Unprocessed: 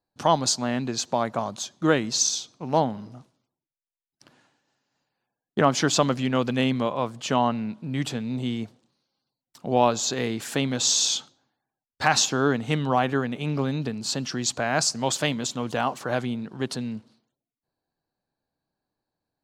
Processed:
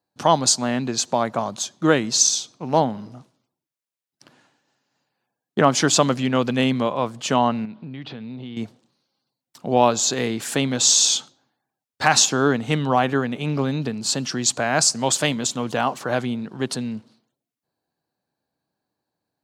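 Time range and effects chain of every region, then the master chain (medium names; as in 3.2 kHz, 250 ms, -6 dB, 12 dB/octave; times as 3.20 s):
7.65–8.57 s: steep low-pass 4.5 kHz + compression 5:1, threshold -35 dBFS
whole clip: high-pass 96 Hz; dynamic bell 8.9 kHz, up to +6 dB, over -42 dBFS, Q 1.3; trim +3.5 dB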